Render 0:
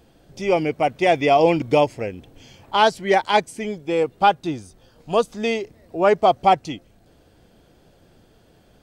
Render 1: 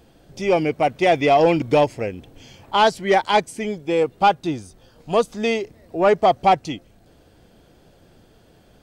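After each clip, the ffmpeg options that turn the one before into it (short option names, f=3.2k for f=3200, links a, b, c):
-af "acontrast=58,volume=-4.5dB"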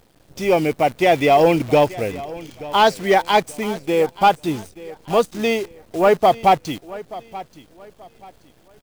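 -af "acrusher=bits=7:dc=4:mix=0:aa=0.000001,aecho=1:1:881|1762|2643:0.126|0.0365|0.0106,volume=1.5dB"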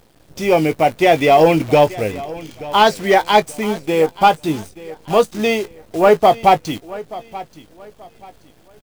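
-filter_complex "[0:a]asplit=2[a][b];[b]adelay=19,volume=-11.5dB[c];[a][c]amix=inputs=2:normalize=0,volume=2.5dB"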